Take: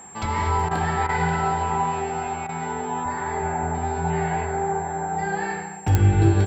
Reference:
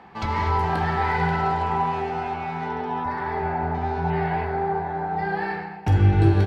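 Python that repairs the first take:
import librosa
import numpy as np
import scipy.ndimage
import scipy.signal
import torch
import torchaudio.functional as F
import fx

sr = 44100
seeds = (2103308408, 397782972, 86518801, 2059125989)

y = fx.fix_declick_ar(x, sr, threshold=10.0)
y = fx.notch(y, sr, hz=7500.0, q=30.0)
y = fx.fix_interpolate(y, sr, at_s=(0.69, 1.07, 2.47), length_ms=19.0)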